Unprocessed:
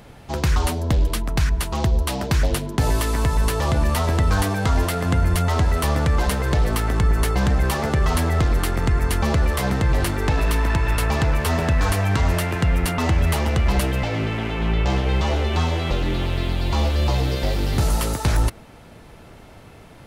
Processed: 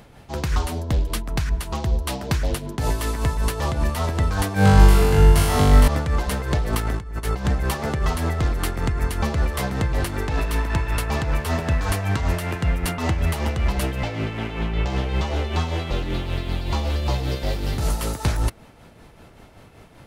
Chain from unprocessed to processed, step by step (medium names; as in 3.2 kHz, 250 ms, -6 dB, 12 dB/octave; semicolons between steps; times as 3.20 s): 6.73–7.45 s: compressor with a negative ratio -21 dBFS, ratio -0.5; tremolo 5.2 Hz, depth 48%; 4.54–5.88 s: flutter echo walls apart 3.5 m, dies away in 1.3 s; trim -1 dB